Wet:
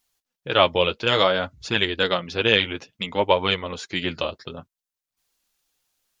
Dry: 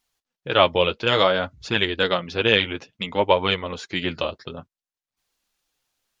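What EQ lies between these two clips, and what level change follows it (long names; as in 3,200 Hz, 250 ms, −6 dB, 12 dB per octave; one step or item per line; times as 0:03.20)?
high-shelf EQ 6,400 Hz +7.5 dB
−1.0 dB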